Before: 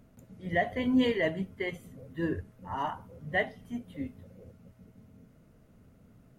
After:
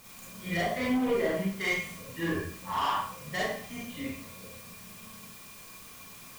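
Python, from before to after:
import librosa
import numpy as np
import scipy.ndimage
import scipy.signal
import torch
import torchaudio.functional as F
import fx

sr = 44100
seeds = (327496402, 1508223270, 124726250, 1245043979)

p1 = fx.env_lowpass_down(x, sr, base_hz=800.0, full_db=-24.0)
p2 = fx.tilt_shelf(p1, sr, db=-8.0, hz=1300.0)
p3 = fx.quant_dither(p2, sr, seeds[0], bits=8, dither='triangular')
p4 = p2 + (p3 * 10.0 ** (-6.5 / 20.0))
p5 = fx.small_body(p4, sr, hz=(1100.0, 2400.0), ring_ms=85, db=17)
p6 = np.clip(10.0 ** (29.5 / 20.0) * p5, -1.0, 1.0) / 10.0 ** (29.5 / 20.0)
p7 = fx.rev_schroeder(p6, sr, rt60_s=0.5, comb_ms=32, drr_db=-6.0)
y = p7 * 10.0 ** (-2.0 / 20.0)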